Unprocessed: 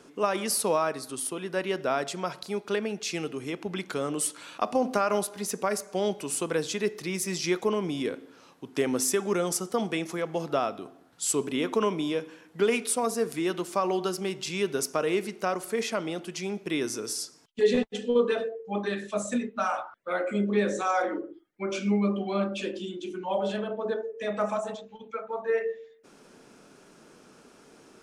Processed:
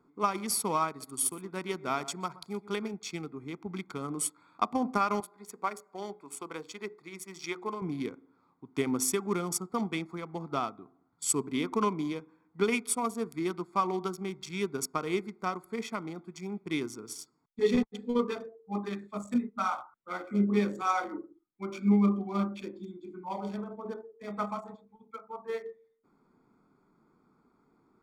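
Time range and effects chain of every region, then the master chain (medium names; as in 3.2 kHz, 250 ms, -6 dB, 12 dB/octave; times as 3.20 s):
0.88–2.94 s: treble shelf 5.5 kHz +8.5 dB + delay 123 ms -13 dB
5.20–7.82 s: tone controls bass -14 dB, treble -3 dB + hum notches 60/120/180/240/300/360/420/480 Hz
whole clip: local Wiener filter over 15 samples; comb 0.9 ms, depth 66%; upward expansion 1.5:1, over -45 dBFS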